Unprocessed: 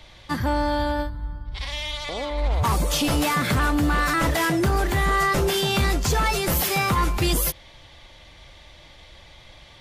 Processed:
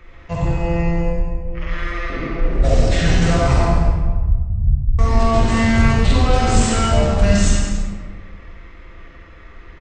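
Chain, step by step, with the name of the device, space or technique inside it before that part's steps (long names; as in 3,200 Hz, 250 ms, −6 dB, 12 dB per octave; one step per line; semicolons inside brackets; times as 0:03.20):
0:03.64–0:04.99: inverse Chebyshev low-pass filter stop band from 840 Hz, stop band 70 dB
monster voice (pitch shifter −9.5 semitones; low-shelf EQ 160 Hz +8.5 dB; single-tap delay 96 ms −10 dB; convolution reverb RT60 1.5 s, pre-delay 40 ms, DRR −2.5 dB)
reverb whose tail is shaped and stops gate 280 ms flat, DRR 7 dB
level −2 dB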